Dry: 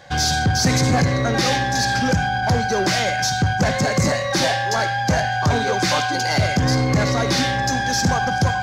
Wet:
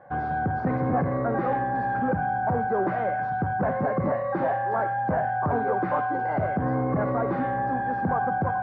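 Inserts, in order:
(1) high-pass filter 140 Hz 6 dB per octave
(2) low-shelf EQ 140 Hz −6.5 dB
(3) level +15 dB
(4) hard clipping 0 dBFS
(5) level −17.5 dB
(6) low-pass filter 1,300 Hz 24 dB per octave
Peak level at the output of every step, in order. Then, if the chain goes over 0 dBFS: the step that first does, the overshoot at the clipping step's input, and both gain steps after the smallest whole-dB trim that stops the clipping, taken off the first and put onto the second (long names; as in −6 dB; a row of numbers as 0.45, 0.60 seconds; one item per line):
−9.0, −9.5, +5.5, 0.0, −17.5, −16.5 dBFS
step 3, 5.5 dB
step 3 +9 dB, step 5 −11.5 dB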